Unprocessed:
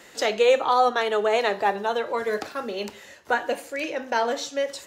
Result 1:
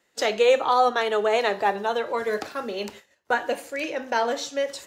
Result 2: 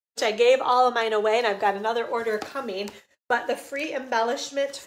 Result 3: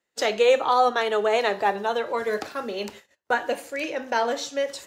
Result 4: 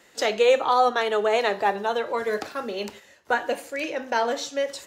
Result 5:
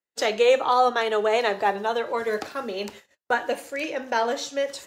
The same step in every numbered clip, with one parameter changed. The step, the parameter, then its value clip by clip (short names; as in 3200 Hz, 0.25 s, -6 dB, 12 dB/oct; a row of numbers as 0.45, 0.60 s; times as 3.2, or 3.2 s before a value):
gate, range: -20, -60, -32, -7, -46 dB